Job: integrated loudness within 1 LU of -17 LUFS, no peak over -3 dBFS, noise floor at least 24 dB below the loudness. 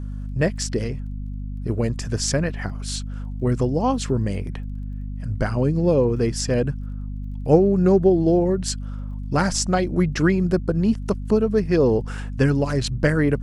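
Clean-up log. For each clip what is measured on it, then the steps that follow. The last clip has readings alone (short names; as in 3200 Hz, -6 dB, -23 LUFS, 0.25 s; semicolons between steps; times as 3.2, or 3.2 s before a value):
ticks 19/s; hum 50 Hz; harmonics up to 250 Hz; hum level -27 dBFS; loudness -21.5 LUFS; peak -3.5 dBFS; loudness target -17.0 LUFS
-> de-click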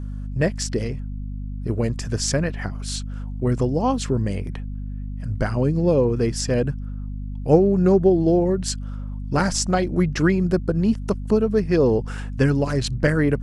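ticks 0.15/s; hum 50 Hz; harmonics up to 250 Hz; hum level -27 dBFS
-> notches 50/100/150/200/250 Hz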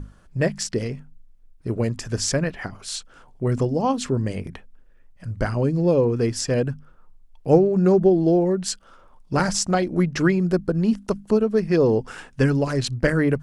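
hum none; loudness -22.0 LUFS; peak -3.5 dBFS; loudness target -17.0 LUFS
-> gain +5 dB; limiter -3 dBFS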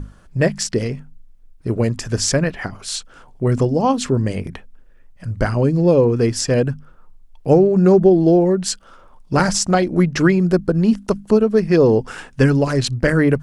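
loudness -17.0 LUFS; peak -3.0 dBFS; noise floor -47 dBFS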